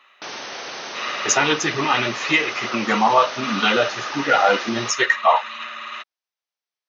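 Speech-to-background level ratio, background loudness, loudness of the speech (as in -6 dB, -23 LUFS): 12.0 dB, -31.5 LUFS, -19.5 LUFS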